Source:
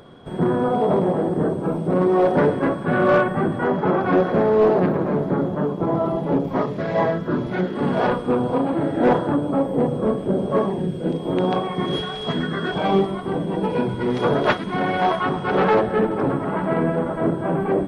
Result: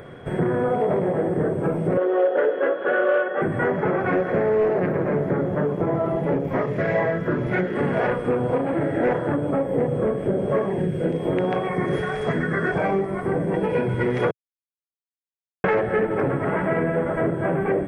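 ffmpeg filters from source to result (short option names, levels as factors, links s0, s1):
-filter_complex "[0:a]asettb=1/sr,asplit=3[s0][s1][s2];[s0]atrim=end=1.974[s3];[s1]atrim=start=1.97:end=3.42,asetpts=PTS-STARTPTS,afade=t=in:d=0.004:c=qsin,afade=t=out:st=1.446:d=0.004:c=qsin,highpass=f=340:w=0.5412,highpass=f=340:w=1.3066,equalizer=f=520:t=q:w=4:g=7,equalizer=f=980:t=q:w=4:g=-4,equalizer=f=1400:t=q:w=4:g=4,equalizer=f=2200:t=q:w=4:g=-9,equalizer=f=3200:t=q:w=4:g=8,lowpass=f=3700:w=0.5412,lowpass=f=3700:w=1.3066[s4];[s2]atrim=start=3.416[s5];[s3][s4]acrossfade=d=0.004:c1=hsin:c2=qsin[s6];[s6][s5]acrossfade=d=0.004:c1=qsin:c2=hsin,asettb=1/sr,asplit=3[s7][s8][s9];[s7]atrim=end=11.694[s10];[s8]atrim=start=11.69:end=13.54,asetpts=PTS-STARTPTS,afade=t=in:d=0.004:c=qsin,afade=t=out:st=1.846:d=0.004:c=qsin,equalizer=f=3200:w=2.3:g=-10.5[s11];[s9]atrim=start=13.536[s12];[s10][s11]acrossfade=d=0.004:c1=hsin:c2=qsin[s13];[s13][s12]acrossfade=d=0.004:c1=qsin:c2=hsin,asplit=3[s14][s15][s16];[s14]atrim=end=14.31,asetpts=PTS-STARTPTS,afade=t=out:st=14.306:d=0.004:c=hsin[s17];[s15]atrim=start=14.31:end=15.64,asetpts=PTS-STARTPTS,volume=0[s18];[s16]atrim=start=15.64,asetpts=PTS-STARTPTS,afade=t=in:d=0.004:c=hsin[s19];[s17][s18][s19]concat=n=3:v=0:a=1,equalizer=f=190:w=1.5:g=-2.5,acompressor=threshold=0.0562:ratio=4,equalizer=f=125:t=o:w=1:g=5,equalizer=f=250:t=o:w=1:g=-3,equalizer=f=500:t=o:w=1:g=4,equalizer=f=1000:t=o:w=1:g=-5,equalizer=f=2000:t=o:w=1:g=11,equalizer=f=4000:t=o:w=1:g=-11,volume=1.58"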